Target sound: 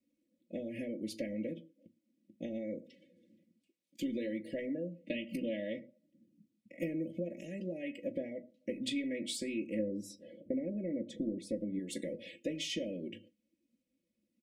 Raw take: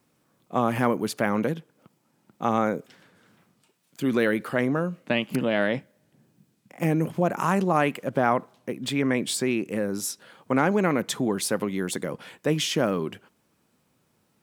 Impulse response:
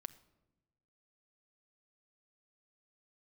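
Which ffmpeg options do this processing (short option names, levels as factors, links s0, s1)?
-filter_complex "[0:a]asettb=1/sr,asplit=3[s0][s1][s2];[s0]atrim=end=9.794[s3];[s1]atrim=start=9.79:end=11.79,asetpts=PTS-STARTPTS,afade=t=in:d=0.004:c=qsin,afade=t=out:st=1.996:d=0.004:c=qsin,tiltshelf=f=1300:g=8.5[s4];[s2]atrim=start=11.786[s5];[s3][s4]acrossfade=d=0.004:c1=hsin:c2=qsin[s6];[s6][s5]acrossfade=d=0.004:c1=qsin:c2=hsin,acompressor=threshold=0.0316:ratio=12,asuperstop=centerf=1100:order=12:qfactor=0.88,highshelf=f=7400:g=-6.5,aecho=1:1:3.6:0.87,aecho=1:1:18|38:0.251|0.158[s7];[1:a]atrim=start_sample=2205,afade=t=out:st=0.22:d=0.01,atrim=end_sample=10143[s8];[s7][s8]afir=irnorm=-1:irlink=0,afftdn=nr=15:nf=-57,volume=0.891"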